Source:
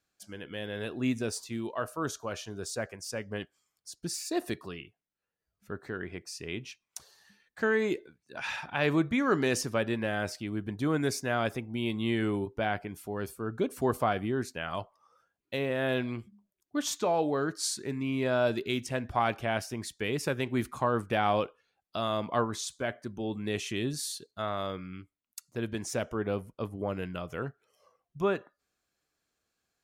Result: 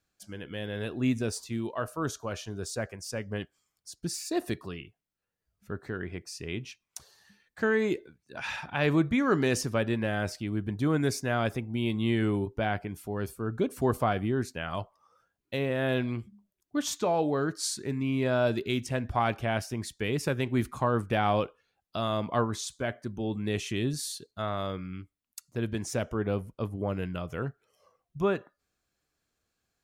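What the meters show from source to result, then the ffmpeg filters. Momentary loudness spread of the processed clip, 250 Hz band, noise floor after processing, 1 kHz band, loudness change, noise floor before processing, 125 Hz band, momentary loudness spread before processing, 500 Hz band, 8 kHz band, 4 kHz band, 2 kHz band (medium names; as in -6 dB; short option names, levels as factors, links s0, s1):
12 LU, +2.5 dB, -84 dBFS, +0.5 dB, +1.5 dB, under -85 dBFS, +5.0 dB, 13 LU, +1.0 dB, 0.0 dB, 0.0 dB, 0.0 dB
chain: -af "lowshelf=f=160:g=8"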